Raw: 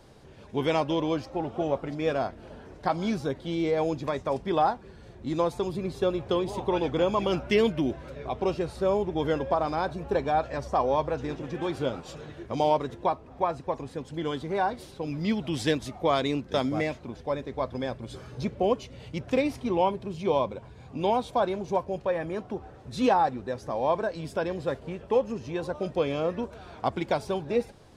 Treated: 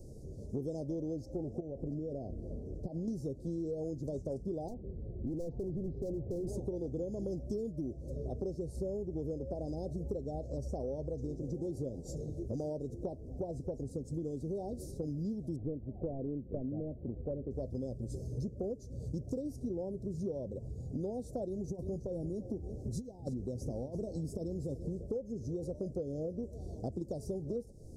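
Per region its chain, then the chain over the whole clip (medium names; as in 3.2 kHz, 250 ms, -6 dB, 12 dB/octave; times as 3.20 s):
1.60–3.08 s: treble shelf 2.4 kHz -10.5 dB + compression 16:1, threshold -32 dBFS
4.68–6.47 s: low-pass 2.5 kHz 24 dB/octave + hard clipper -30 dBFS
15.56–17.51 s: CVSD coder 16 kbps + low-pass 2.2 kHz
21.48–25.03 s: dynamic bell 540 Hz, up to -7 dB, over -39 dBFS, Q 1.6 + compressor with a negative ratio -31 dBFS, ratio -0.5 + delay 342 ms -14.5 dB
whole clip: inverse Chebyshev band-stop 1.2–2.8 kHz, stop band 60 dB; bass shelf 97 Hz +10.5 dB; compression 10:1, threshold -36 dBFS; trim +1.5 dB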